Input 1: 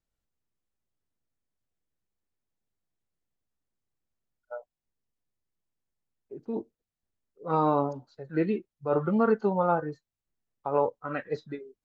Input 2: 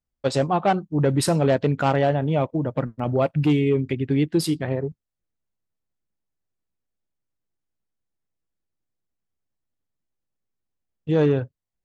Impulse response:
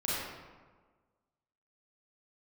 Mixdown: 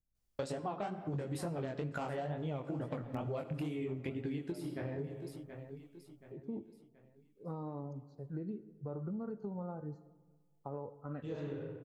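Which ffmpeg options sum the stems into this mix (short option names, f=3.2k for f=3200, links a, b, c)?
-filter_complex "[0:a]bass=f=250:g=10,treble=f=4k:g=2,acompressor=threshold=-27dB:ratio=6,equalizer=f=2.4k:w=0.69:g=-15,volume=-8.5dB,asplit=3[a][b][c];[b]volume=-21.5dB[d];[1:a]acrossover=split=2400|7900[e][f][g];[e]acompressor=threshold=-25dB:ratio=4[h];[f]acompressor=threshold=-54dB:ratio=4[i];[g]acompressor=threshold=-51dB:ratio=4[j];[h][i][j]amix=inputs=3:normalize=0,flanger=delay=17:depth=7.6:speed=2.2,highshelf=f=3.9k:g=7.5,adelay=150,volume=1.5dB,asplit=3[k][l][m];[l]volume=-19dB[n];[m]volume=-19dB[o];[c]apad=whole_len=528789[p];[k][p]sidechaincompress=threshold=-57dB:ratio=8:attack=16:release=854[q];[2:a]atrim=start_sample=2205[r];[d][n]amix=inputs=2:normalize=0[s];[s][r]afir=irnorm=-1:irlink=0[t];[o]aecho=0:1:727|1454|2181|2908|3635:1|0.39|0.152|0.0593|0.0231[u];[a][q][t][u]amix=inputs=4:normalize=0,acompressor=threshold=-36dB:ratio=6"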